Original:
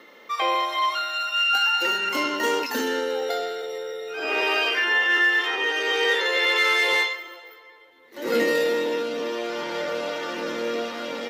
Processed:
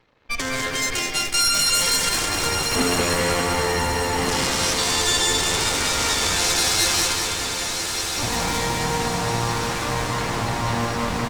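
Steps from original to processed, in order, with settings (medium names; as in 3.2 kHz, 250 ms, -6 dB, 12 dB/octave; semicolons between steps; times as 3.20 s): local Wiener filter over 15 samples; peak limiter -23.5 dBFS, peak gain reduction 11.5 dB; 2.76–4.17 s: tilt EQ -4.5 dB/octave; delay 220 ms -11 dB; Chebyshev shaper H 3 -28 dB, 7 -20 dB, 8 -9 dB, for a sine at -15 dBFS; tone controls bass +4 dB, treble +14 dB; on a send: echo that smears into a reverb 1213 ms, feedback 60%, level -6 dB; on the sum: bit-crushed delay 199 ms, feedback 55%, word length 8-bit, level -5 dB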